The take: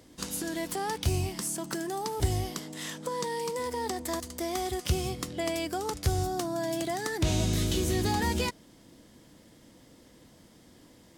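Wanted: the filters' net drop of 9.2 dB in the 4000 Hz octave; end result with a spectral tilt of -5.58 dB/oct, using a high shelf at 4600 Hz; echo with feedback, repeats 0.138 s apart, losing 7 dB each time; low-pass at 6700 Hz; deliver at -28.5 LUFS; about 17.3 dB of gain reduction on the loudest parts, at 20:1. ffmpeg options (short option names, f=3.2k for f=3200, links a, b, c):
-af "lowpass=6.7k,equalizer=f=4k:t=o:g=-7,highshelf=f=4.6k:g=-8.5,acompressor=threshold=-39dB:ratio=20,aecho=1:1:138|276|414|552|690:0.447|0.201|0.0905|0.0407|0.0183,volume=14.5dB"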